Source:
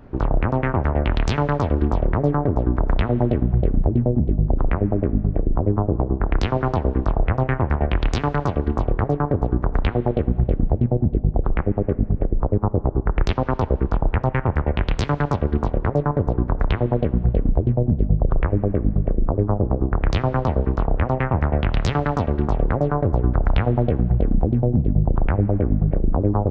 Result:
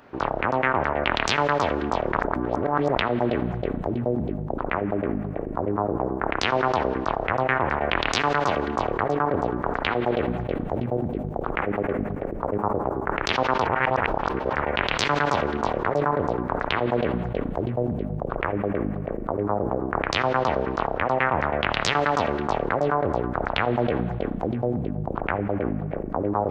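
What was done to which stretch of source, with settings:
2.17–2.95 reverse
13.67–14.53 reverse
whole clip: HPF 1400 Hz 6 dB/oct; sustainer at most 26 dB/s; gain +7 dB

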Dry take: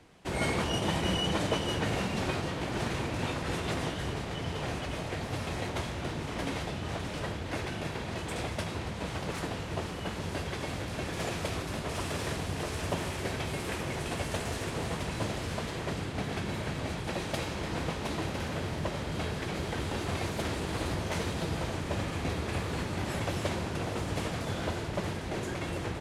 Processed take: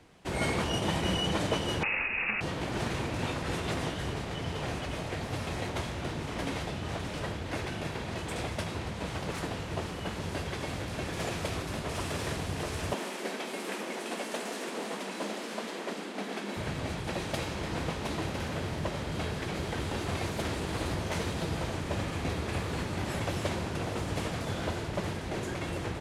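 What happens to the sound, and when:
1.83–2.41 inverted band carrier 2700 Hz
12.93–16.57 elliptic high-pass 200 Hz

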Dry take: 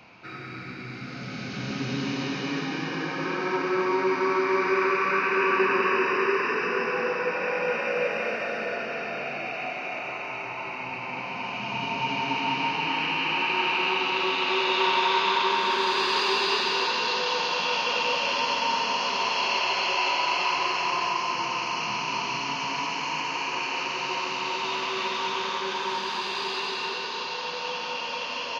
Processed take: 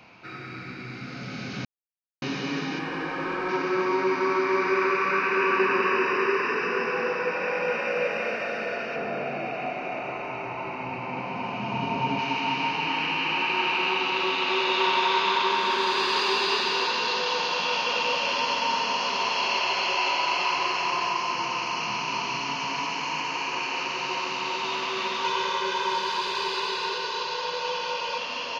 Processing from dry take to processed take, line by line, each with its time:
1.65–2.22 mute
2.79–3.49 overdrive pedal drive 11 dB, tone 1200 Hz, clips at -18 dBFS
8.96–12.19 tilt shelf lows +6 dB, about 1300 Hz
25.24–28.18 comb 2 ms

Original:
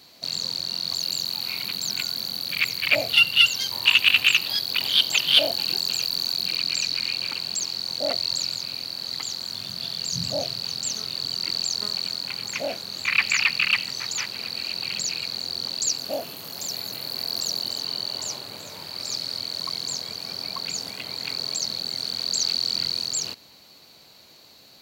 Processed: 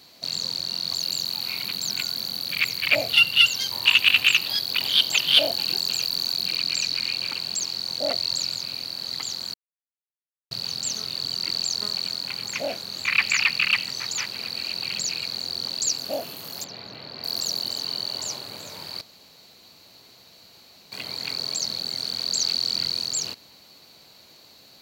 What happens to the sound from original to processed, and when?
9.54–10.51 mute
16.64–17.24 air absorption 240 m
19.01–20.92 room tone

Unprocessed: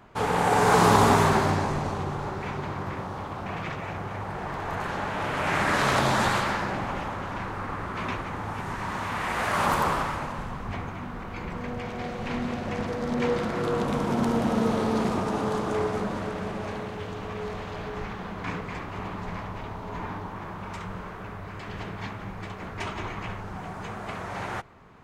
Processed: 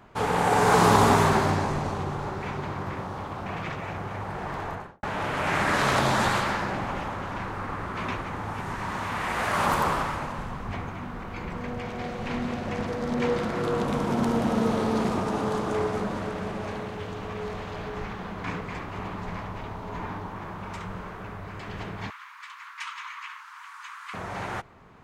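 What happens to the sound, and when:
4.59–5.03 studio fade out
22.1–24.14 steep high-pass 990 Hz 72 dB/oct

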